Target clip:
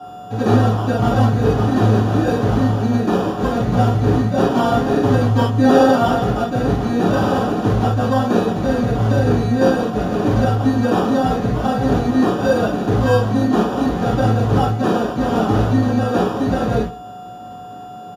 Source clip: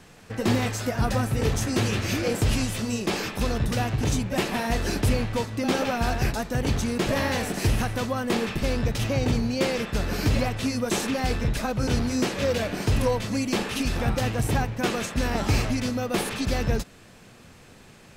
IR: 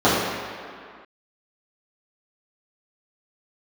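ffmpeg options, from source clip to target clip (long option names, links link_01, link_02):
-filter_complex "[0:a]asettb=1/sr,asplit=3[link_01][link_02][link_03];[link_01]atrim=end=4.394[link_04];[link_02]atrim=start=4.39:end=6.18,asetpts=PTS-STARTPTS,afade=type=in:duration=0.004:curve=qsin,afade=type=out:start_time=1.786:duration=0.004:curve=qsin,aecho=1:1:7.5:0.72,atrim=end_sample=78939[link_05];[link_03]atrim=start=6.176[link_06];[link_04][link_05]acrossfade=duration=0.004:curve1=hsin:curve2=qsin[link_07];[link_07][link_06]acrossfade=duration=0.004:curve1=qsin:curve2=hsin,acrossover=split=330|2700[link_08][link_09][link_10];[link_08]alimiter=limit=-20dB:level=0:latency=1[link_11];[link_11][link_09][link_10]amix=inputs=3:normalize=0,aeval=exprs='val(0)+0.00891*sin(2*PI*730*n/s)':channel_layout=same,acrusher=samples=21:mix=1:aa=0.000001,aecho=1:1:133:0.0891[link_12];[1:a]atrim=start_sample=2205,atrim=end_sample=3528[link_13];[link_12][link_13]afir=irnorm=-1:irlink=0,aresample=32000,aresample=44100,volume=-15.5dB"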